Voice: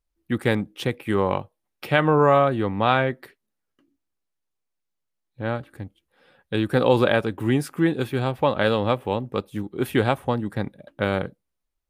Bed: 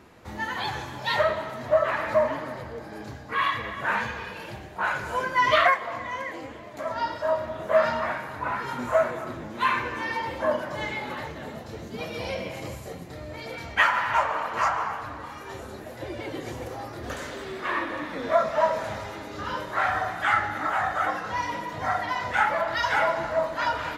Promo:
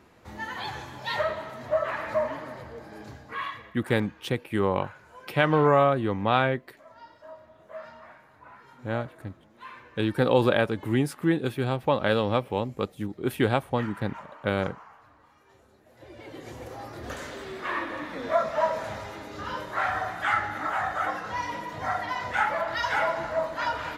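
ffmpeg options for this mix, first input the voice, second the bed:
ffmpeg -i stem1.wav -i stem2.wav -filter_complex "[0:a]adelay=3450,volume=-3dB[link_01];[1:a]volume=13.5dB,afade=type=out:start_time=3.16:duration=0.6:silence=0.158489,afade=type=in:start_time=15.83:duration=1.13:silence=0.125893[link_02];[link_01][link_02]amix=inputs=2:normalize=0" out.wav

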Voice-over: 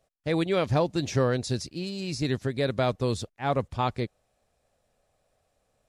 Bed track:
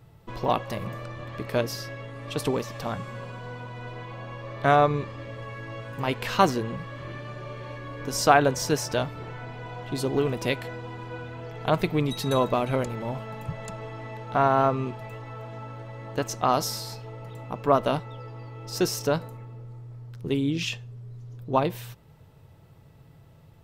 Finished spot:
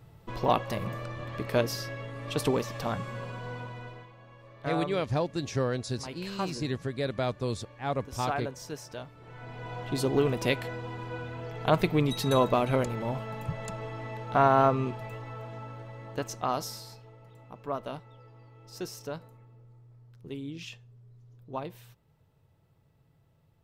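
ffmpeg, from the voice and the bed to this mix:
ffmpeg -i stem1.wav -i stem2.wav -filter_complex "[0:a]adelay=4400,volume=-4.5dB[link_01];[1:a]volume=13.5dB,afade=type=out:start_time=3.59:duration=0.53:silence=0.199526,afade=type=in:start_time=9.21:duration=0.53:silence=0.199526,afade=type=out:start_time=14.93:duration=2.25:silence=0.237137[link_02];[link_01][link_02]amix=inputs=2:normalize=0" out.wav

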